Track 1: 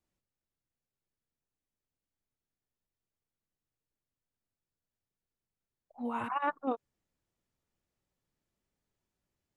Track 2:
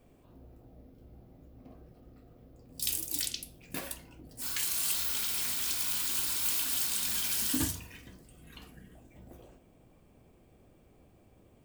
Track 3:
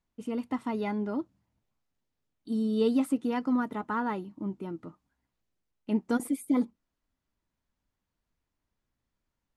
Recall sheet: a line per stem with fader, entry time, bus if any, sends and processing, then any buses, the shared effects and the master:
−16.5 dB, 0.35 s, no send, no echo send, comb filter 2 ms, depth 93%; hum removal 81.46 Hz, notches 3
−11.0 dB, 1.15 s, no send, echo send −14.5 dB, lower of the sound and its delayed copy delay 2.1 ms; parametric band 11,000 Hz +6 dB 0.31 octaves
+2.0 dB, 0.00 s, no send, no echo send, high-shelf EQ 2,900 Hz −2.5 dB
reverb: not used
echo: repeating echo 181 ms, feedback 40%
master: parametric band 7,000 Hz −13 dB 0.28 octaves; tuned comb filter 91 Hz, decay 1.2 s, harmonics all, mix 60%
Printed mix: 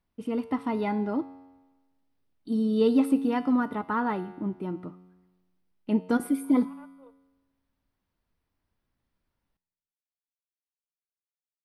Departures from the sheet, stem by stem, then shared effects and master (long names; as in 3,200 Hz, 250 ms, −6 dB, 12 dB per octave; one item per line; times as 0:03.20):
stem 2: muted
stem 3 +2.0 dB → +10.5 dB